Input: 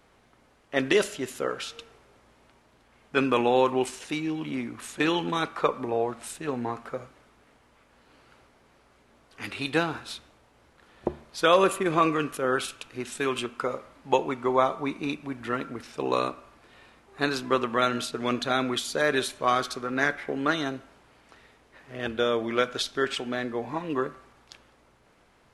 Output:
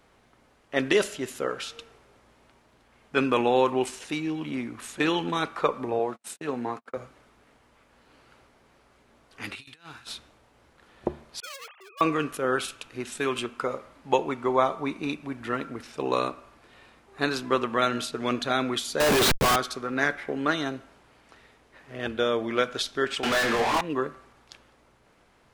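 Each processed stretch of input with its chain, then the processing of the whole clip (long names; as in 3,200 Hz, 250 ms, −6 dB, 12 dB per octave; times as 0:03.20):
0:05.99–0:06.97: noise gate −41 dBFS, range −41 dB + high-pass filter 150 Hz
0:09.55–0:10.07: guitar amp tone stack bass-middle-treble 5-5-5 + compressor whose output falls as the input rises −46 dBFS, ratio −0.5
0:11.40–0:12.01: three sine waves on the formant tracks + gain into a clipping stage and back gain 24.5 dB + first difference
0:19.00–0:19.56: linear delta modulator 64 kbit/s, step −37.5 dBFS + comparator with hysteresis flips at −38 dBFS + leveller curve on the samples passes 5
0:23.23–0:23.81: low-shelf EQ 380 Hz −10 dB + mid-hump overdrive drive 35 dB, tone 7,700 Hz, clips at −18 dBFS + double-tracking delay 26 ms −7 dB
whole clip: no processing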